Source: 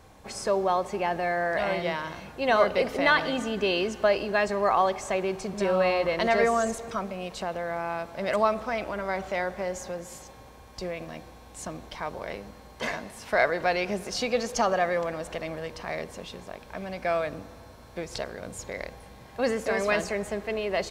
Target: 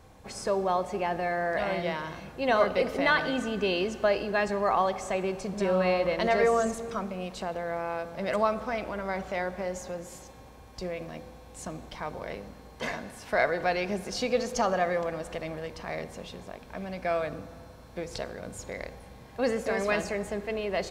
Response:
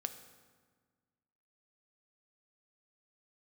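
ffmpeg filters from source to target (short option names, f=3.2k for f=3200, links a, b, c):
-filter_complex "[0:a]asplit=2[a][b];[1:a]atrim=start_sample=2205,lowshelf=f=470:g=6[c];[b][c]afir=irnorm=-1:irlink=0,volume=0.5dB[d];[a][d]amix=inputs=2:normalize=0,volume=-8.5dB"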